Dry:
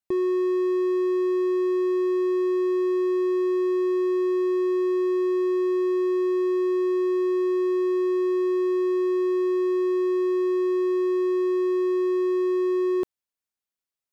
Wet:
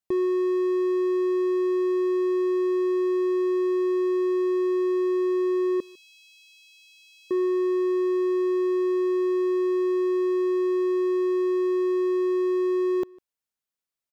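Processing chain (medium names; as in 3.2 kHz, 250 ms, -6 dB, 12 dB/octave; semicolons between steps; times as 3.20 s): 5.80–7.31 s: brick-wall FIR high-pass 2.4 kHz; echo from a far wall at 26 m, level -25 dB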